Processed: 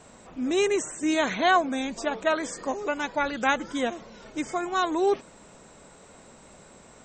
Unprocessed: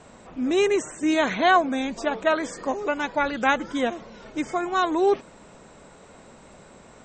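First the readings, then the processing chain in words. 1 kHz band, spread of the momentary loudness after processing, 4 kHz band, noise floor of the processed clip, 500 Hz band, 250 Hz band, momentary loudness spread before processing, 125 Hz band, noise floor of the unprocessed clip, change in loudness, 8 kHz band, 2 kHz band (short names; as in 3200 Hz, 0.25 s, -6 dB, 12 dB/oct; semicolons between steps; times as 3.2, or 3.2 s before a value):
-3.0 dB, 9 LU, -1.0 dB, -52 dBFS, -3.0 dB, -3.0 dB, 9 LU, -3.0 dB, -50 dBFS, -2.5 dB, +2.5 dB, -2.5 dB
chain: high shelf 6700 Hz +10.5 dB; gain -3 dB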